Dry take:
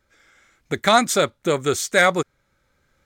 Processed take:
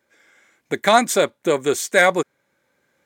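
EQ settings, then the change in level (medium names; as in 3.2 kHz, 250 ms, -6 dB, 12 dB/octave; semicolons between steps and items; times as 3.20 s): high-pass 220 Hz 12 dB/octave; peaking EQ 4.6 kHz -5 dB 1.3 oct; band-stop 1.3 kHz, Q 6.9; +2.5 dB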